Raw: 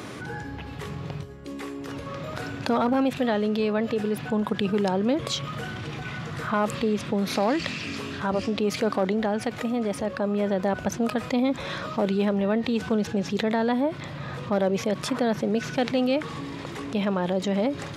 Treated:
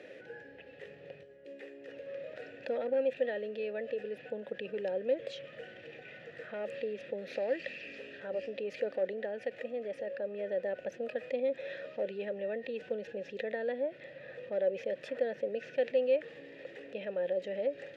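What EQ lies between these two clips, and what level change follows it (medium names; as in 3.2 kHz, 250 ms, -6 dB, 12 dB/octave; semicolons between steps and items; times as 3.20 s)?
vowel filter e; 0.0 dB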